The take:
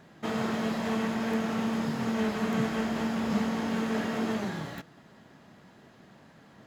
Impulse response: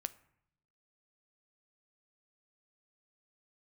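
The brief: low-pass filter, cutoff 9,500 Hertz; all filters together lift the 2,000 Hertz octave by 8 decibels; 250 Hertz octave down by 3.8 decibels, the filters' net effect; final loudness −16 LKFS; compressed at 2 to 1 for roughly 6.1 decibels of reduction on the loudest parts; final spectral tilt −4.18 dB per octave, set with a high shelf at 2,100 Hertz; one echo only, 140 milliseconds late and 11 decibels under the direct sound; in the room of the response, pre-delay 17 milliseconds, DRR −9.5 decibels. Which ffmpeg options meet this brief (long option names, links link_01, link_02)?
-filter_complex "[0:a]lowpass=9500,equalizer=frequency=250:width_type=o:gain=-4.5,equalizer=frequency=2000:width_type=o:gain=8,highshelf=frequency=2100:gain=3.5,acompressor=threshold=-36dB:ratio=2,aecho=1:1:140:0.282,asplit=2[link_01][link_02];[1:a]atrim=start_sample=2205,adelay=17[link_03];[link_02][link_03]afir=irnorm=-1:irlink=0,volume=11dB[link_04];[link_01][link_04]amix=inputs=2:normalize=0,volume=9dB"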